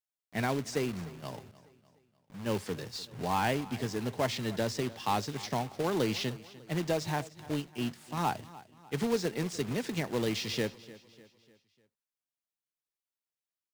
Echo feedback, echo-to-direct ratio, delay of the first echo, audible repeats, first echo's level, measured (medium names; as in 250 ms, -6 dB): 46%, -18.0 dB, 299 ms, 3, -19.0 dB